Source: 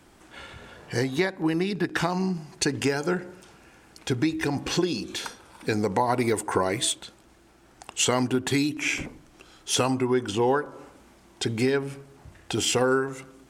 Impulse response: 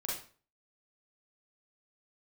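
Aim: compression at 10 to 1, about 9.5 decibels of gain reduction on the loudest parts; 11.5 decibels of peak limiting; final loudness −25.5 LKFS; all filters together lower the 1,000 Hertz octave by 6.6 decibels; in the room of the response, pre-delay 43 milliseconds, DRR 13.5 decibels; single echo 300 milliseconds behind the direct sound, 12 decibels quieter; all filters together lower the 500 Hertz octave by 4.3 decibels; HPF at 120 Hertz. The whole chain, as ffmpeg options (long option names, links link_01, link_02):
-filter_complex "[0:a]highpass=120,equalizer=frequency=500:width_type=o:gain=-4.5,equalizer=frequency=1000:width_type=o:gain=-7,acompressor=threshold=-31dB:ratio=10,alimiter=level_in=5dB:limit=-24dB:level=0:latency=1,volume=-5dB,aecho=1:1:300:0.251,asplit=2[link_01][link_02];[1:a]atrim=start_sample=2205,adelay=43[link_03];[link_02][link_03]afir=irnorm=-1:irlink=0,volume=-16dB[link_04];[link_01][link_04]amix=inputs=2:normalize=0,volume=14dB"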